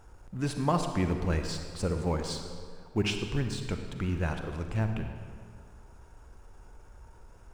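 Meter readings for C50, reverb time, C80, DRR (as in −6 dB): 6.0 dB, 2.0 s, 7.0 dB, 5.5 dB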